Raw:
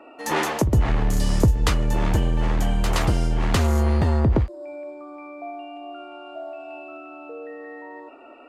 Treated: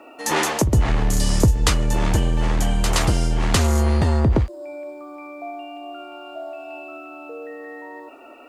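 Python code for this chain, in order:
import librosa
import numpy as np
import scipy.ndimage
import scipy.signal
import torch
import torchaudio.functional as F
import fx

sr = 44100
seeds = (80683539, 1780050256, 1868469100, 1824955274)

y = scipy.signal.sosfilt(scipy.signal.butter(2, 10000.0, 'lowpass', fs=sr, output='sos'), x)
y = fx.high_shelf(y, sr, hz=5200.0, db=11.5)
y = fx.quant_dither(y, sr, seeds[0], bits=12, dither='triangular')
y = F.gain(torch.from_numpy(y), 1.5).numpy()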